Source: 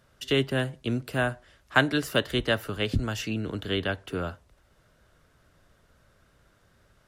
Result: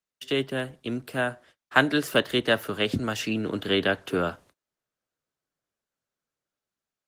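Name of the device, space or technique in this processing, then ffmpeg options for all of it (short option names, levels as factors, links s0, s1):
video call: -af "highpass=170,dynaudnorm=f=640:g=5:m=2.82,agate=range=0.0224:threshold=0.00316:ratio=16:detection=peak,volume=0.891" -ar 48000 -c:a libopus -b:a 20k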